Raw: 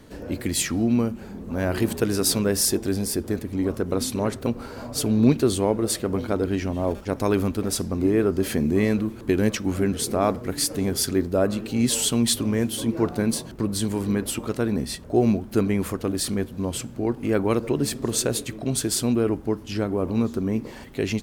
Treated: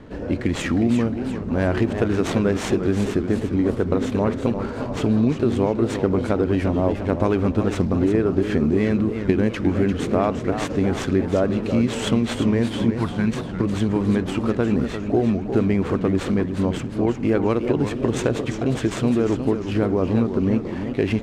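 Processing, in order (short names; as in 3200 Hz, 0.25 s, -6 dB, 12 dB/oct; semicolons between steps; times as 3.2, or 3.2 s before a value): median filter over 9 samples; 12.92–13.37 bell 440 Hz -14.5 dB 1.4 oct; compressor, threshold -22 dBFS, peak gain reduction 10.5 dB; air absorption 79 m; warbling echo 0.353 s, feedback 48%, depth 173 cents, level -8.5 dB; gain +6.5 dB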